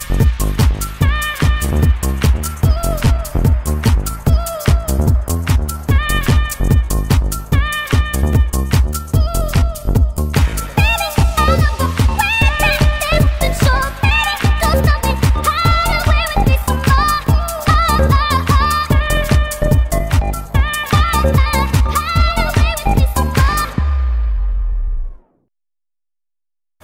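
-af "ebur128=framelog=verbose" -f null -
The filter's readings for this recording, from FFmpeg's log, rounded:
Integrated loudness:
  I:         -15.2 LUFS
  Threshold: -25.3 LUFS
Loudness range:
  LRA:         2.4 LU
  Threshold: -35.2 LUFS
  LRA low:   -16.3 LUFS
  LRA high:  -13.9 LUFS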